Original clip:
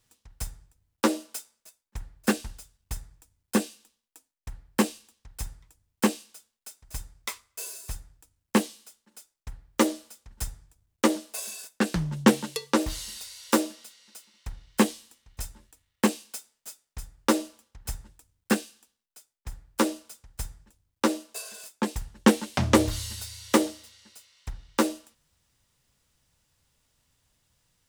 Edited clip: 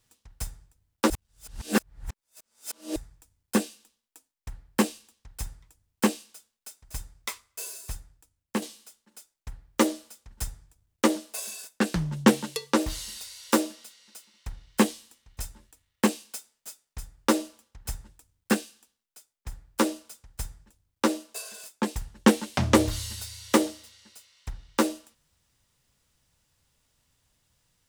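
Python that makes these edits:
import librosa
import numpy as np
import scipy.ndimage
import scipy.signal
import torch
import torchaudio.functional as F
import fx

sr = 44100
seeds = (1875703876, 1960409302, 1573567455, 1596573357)

y = fx.edit(x, sr, fx.reverse_span(start_s=1.1, length_s=1.86),
    fx.fade_out_to(start_s=7.86, length_s=0.76, floor_db=-8.0), tone=tone)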